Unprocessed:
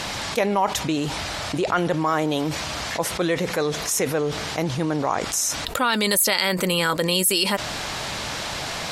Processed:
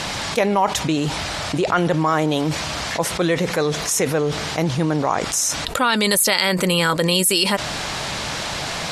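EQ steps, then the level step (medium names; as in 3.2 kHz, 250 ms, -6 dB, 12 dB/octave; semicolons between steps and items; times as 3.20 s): low-pass 12 kHz 24 dB/octave; peaking EQ 160 Hz +3.5 dB 0.32 oct; +3.0 dB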